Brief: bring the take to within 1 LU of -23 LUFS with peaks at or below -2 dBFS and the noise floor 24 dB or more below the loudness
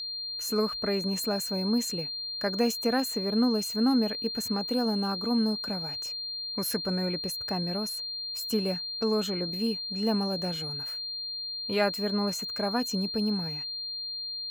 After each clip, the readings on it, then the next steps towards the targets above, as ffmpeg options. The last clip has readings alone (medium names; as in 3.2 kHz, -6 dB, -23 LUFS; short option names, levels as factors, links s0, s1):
steady tone 4.2 kHz; tone level -33 dBFS; loudness -29.0 LUFS; peak level -13.5 dBFS; loudness target -23.0 LUFS
-> -af "bandreject=f=4200:w=30"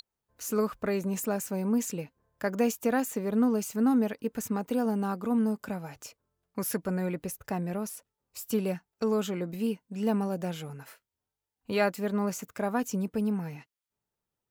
steady tone not found; loudness -30.5 LUFS; peak level -14.0 dBFS; loudness target -23.0 LUFS
-> -af "volume=2.37"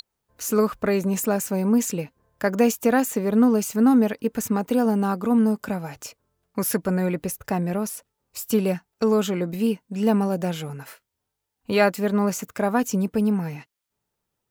loudness -23.0 LUFS; peak level -6.5 dBFS; noise floor -81 dBFS